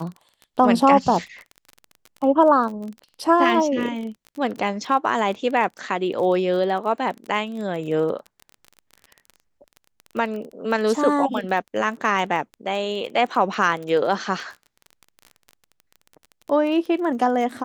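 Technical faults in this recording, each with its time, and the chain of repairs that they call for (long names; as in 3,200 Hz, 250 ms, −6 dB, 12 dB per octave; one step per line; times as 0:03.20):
surface crackle 27 per second −30 dBFS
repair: click removal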